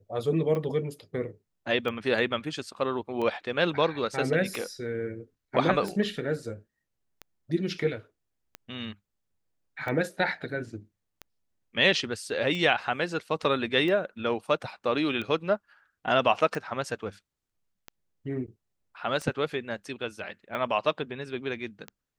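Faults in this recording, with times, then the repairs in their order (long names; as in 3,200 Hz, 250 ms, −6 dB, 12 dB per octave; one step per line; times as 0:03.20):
scratch tick 45 rpm −22 dBFS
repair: click removal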